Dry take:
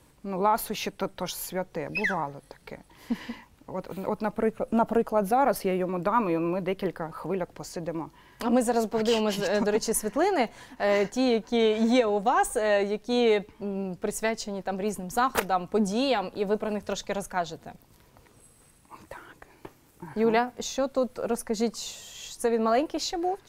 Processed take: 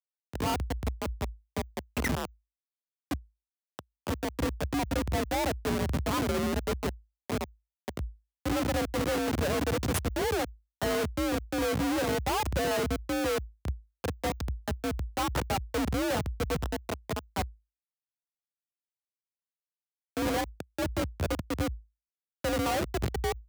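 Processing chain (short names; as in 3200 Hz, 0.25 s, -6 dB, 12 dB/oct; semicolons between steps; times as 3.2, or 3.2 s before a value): low-pass opened by the level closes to 800 Hz, open at -23 dBFS; Schmitt trigger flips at -24.5 dBFS; frequency shift +54 Hz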